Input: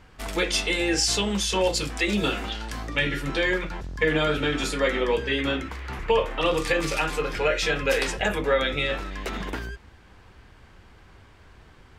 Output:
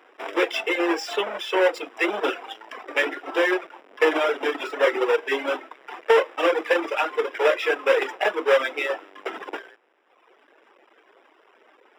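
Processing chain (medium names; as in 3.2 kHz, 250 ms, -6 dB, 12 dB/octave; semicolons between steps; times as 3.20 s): square wave that keeps the level; steep high-pass 340 Hz 36 dB/octave; reverb removal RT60 1.4 s; Savitzky-Golay filter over 25 samples; trim +1 dB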